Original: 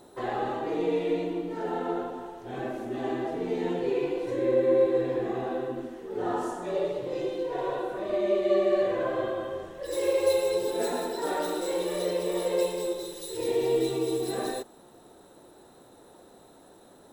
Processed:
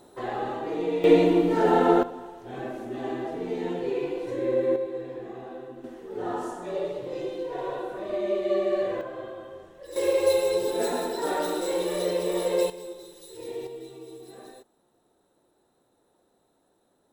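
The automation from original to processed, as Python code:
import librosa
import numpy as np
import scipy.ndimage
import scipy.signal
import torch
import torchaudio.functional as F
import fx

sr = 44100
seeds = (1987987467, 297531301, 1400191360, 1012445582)

y = fx.gain(x, sr, db=fx.steps((0.0, -0.5), (1.04, 11.0), (2.03, -1.0), (4.76, -8.5), (5.84, -1.5), (9.01, -8.0), (9.96, 2.0), (12.7, -8.5), (13.67, -15.0)))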